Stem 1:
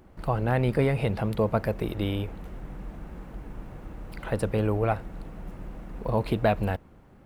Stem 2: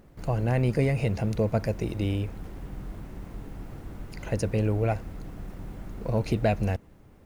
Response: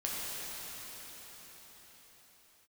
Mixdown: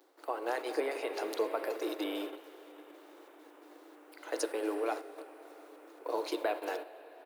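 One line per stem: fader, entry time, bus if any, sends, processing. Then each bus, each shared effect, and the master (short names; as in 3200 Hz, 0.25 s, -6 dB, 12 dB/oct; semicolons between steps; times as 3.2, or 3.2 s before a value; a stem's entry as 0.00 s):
-3.0 dB, 0.00 s, send -7 dB, high shelf 10000 Hz +8 dB; compressor 2:1, threshold -33 dBFS, peak gain reduction 8.5 dB
-1.0 dB, 7.3 ms, polarity flipped, no send, resonant high shelf 2900 Hz +8 dB, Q 3; step gate "xx..xxx.x.x" 133 bpm; auto duck -8 dB, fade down 0.20 s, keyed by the first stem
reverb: on, pre-delay 6 ms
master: gate -34 dBFS, range -8 dB; Chebyshev high-pass 300 Hz, order 6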